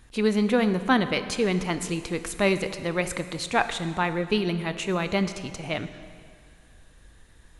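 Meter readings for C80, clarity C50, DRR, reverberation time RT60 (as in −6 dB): 12.5 dB, 11.5 dB, 10.5 dB, 2.1 s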